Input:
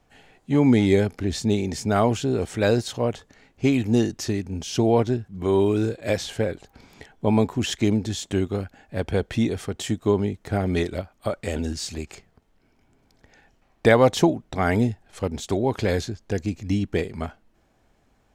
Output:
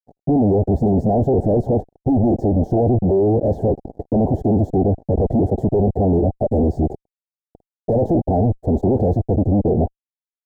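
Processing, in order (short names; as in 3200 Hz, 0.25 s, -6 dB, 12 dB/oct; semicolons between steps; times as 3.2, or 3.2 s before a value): time stretch by phase-locked vocoder 0.57×; fuzz box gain 44 dB, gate -47 dBFS; elliptic low-pass 750 Hz, stop band 40 dB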